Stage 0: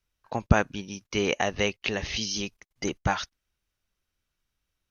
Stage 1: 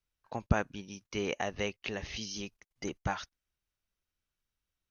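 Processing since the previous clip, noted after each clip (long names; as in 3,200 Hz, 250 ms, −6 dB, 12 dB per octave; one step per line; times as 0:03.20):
dynamic equaliser 4,200 Hz, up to −3 dB, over −39 dBFS, Q 0.76
level −7.5 dB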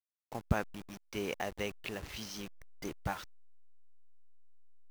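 hold until the input has moved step −40 dBFS
level −3 dB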